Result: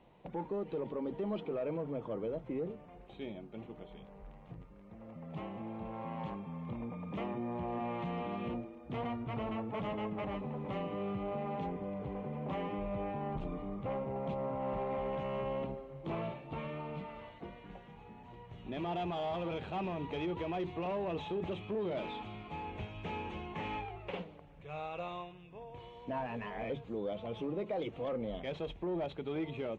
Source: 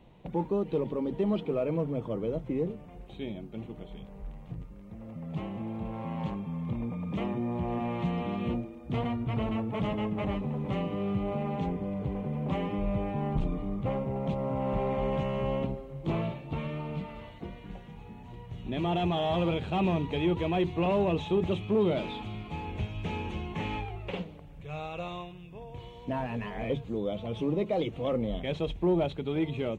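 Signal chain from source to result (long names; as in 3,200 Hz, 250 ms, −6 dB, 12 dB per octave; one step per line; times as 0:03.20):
mid-hump overdrive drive 12 dB, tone 1,500 Hz, clips at −17.5 dBFS
brickwall limiter −23.5 dBFS, peak gain reduction 4.5 dB
level −6 dB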